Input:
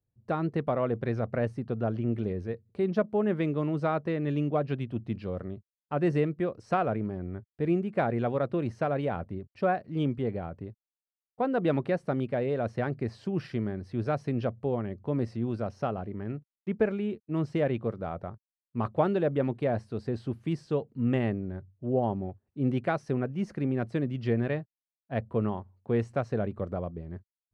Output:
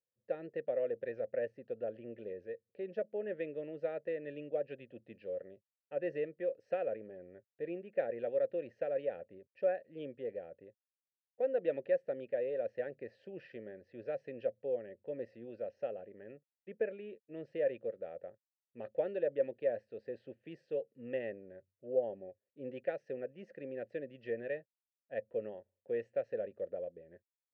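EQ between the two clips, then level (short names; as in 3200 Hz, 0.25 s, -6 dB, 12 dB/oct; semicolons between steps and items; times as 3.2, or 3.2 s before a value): vowel filter e; +1.0 dB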